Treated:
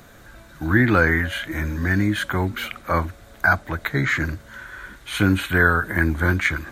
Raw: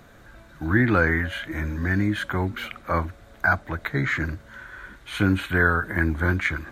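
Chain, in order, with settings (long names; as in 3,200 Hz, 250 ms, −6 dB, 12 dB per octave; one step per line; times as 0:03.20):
high-shelf EQ 4,700 Hz +8 dB
level +2.5 dB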